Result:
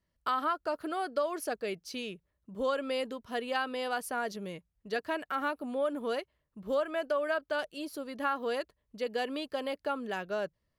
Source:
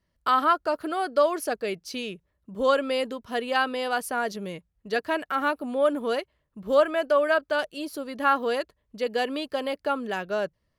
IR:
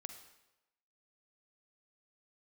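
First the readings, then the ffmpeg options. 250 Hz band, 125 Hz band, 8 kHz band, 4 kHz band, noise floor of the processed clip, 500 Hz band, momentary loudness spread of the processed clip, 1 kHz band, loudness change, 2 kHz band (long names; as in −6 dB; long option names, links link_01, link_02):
−6.5 dB, −5.5 dB, −6.0 dB, −7.0 dB, −81 dBFS, −8.0 dB, 8 LU, −8.5 dB, −8.0 dB, −7.5 dB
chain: -af "acompressor=threshold=-22dB:ratio=3,volume=-5.5dB"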